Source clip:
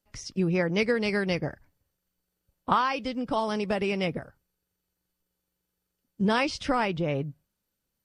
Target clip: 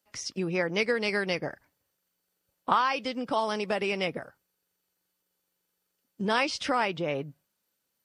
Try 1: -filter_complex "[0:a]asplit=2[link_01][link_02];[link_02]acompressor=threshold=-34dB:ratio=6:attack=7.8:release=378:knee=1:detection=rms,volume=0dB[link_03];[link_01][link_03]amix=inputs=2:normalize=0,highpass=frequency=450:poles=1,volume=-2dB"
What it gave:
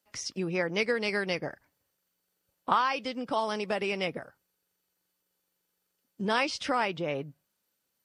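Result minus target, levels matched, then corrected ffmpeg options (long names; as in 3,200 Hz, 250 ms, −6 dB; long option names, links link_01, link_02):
downward compressor: peak gain reduction +6 dB
-filter_complex "[0:a]asplit=2[link_01][link_02];[link_02]acompressor=threshold=-27dB:ratio=6:attack=7.8:release=378:knee=1:detection=rms,volume=0dB[link_03];[link_01][link_03]amix=inputs=2:normalize=0,highpass=frequency=450:poles=1,volume=-2dB"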